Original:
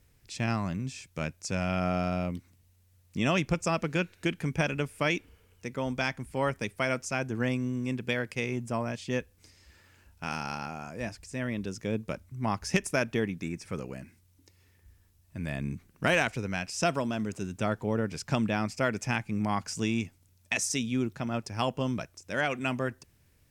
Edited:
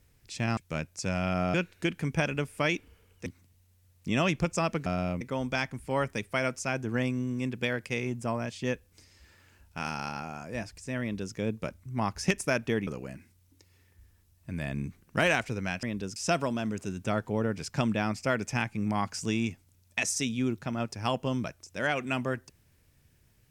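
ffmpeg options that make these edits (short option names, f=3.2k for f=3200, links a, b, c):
-filter_complex "[0:a]asplit=9[a][b][c][d][e][f][g][h][i];[a]atrim=end=0.572[j];[b]atrim=start=1.028:end=2.002[k];[c]atrim=start=3.948:end=5.672[l];[d]atrim=start=2.348:end=3.952[m];[e]atrim=start=1.998:end=2.352[n];[f]atrim=start=5.668:end=13.332[o];[g]atrim=start=13.738:end=16.702[p];[h]atrim=start=11.468:end=11.802[q];[i]atrim=start=16.698[r];[j][k]acrossfade=d=0.004:c1=hsin:c2=hsin[s];[s][l]acrossfade=d=0.004:c1=hsin:c2=hsin[t];[t][m]acrossfade=d=0.004:c1=hsin:c2=hsin[u];[u][n]acrossfade=d=0.004:c1=hsin:c2=hsin[v];[v][o]acrossfade=d=0.004:c1=hsin:c2=hsin[w];[w][p]acrossfade=d=0.004:c1=hsin:c2=hsin[x];[x][q]acrossfade=d=0.004:c1=hsin:c2=hsin[y];[y][r]acrossfade=d=0.004:c1=hsin:c2=hsin"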